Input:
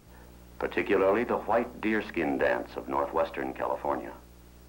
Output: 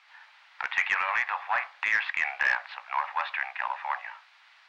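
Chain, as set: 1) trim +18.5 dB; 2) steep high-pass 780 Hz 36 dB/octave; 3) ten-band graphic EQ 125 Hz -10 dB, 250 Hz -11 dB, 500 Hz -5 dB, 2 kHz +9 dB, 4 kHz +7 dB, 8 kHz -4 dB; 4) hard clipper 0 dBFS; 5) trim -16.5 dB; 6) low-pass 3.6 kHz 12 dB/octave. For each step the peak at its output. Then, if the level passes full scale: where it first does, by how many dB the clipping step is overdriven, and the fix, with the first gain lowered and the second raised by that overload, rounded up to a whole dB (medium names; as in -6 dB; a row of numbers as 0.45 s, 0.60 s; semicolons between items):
+4.5 dBFS, +2.0 dBFS, +10.0 dBFS, 0.0 dBFS, -16.5 dBFS, -15.5 dBFS; step 1, 10.0 dB; step 1 +8.5 dB, step 5 -6.5 dB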